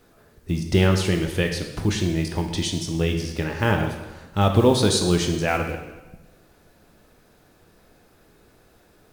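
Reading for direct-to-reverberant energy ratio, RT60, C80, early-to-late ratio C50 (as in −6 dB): 3.5 dB, 1.1 s, 9.0 dB, 6.5 dB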